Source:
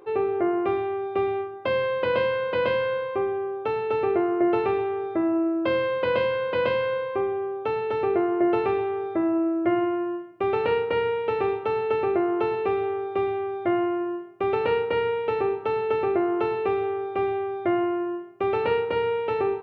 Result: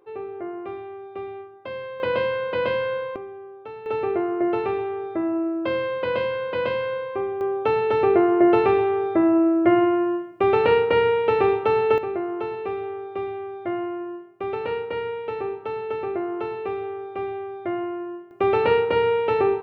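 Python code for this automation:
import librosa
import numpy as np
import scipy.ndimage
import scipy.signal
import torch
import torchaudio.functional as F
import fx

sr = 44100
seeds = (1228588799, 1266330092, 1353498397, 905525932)

y = fx.gain(x, sr, db=fx.steps((0.0, -9.0), (2.0, 0.0), (3.16, -11.0), (3.86, -1.0), (7.41, 5.5), (11.98, -4.0), (18.31, 4.5)))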